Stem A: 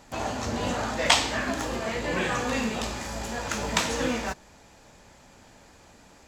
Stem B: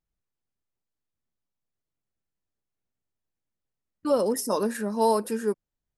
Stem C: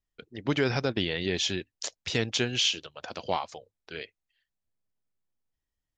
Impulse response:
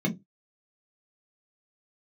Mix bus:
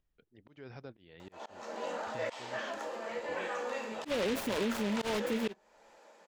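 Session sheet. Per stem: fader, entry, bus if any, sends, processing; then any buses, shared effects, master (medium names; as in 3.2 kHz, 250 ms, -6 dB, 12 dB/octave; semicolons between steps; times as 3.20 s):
-6.0 dB, 1.20 s, send -16 dB, upward compressor, threshold -41 dBFS; high-pass 410 Hz 24 dB/octave
+1.5 dB, 0.00 s, no send, delay time shaken by noise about 2.6 kHz, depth 0.22 ms
-18.5 dB, 0.00 s, no send, upward compressor, threshold -47 dBFS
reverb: on, pre-delay 3 ms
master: treble shelf 2.7 kHz -11 dB; slow attack 250 ms; peak limiter -24.5 dBFS, peak gain reduction 10 dB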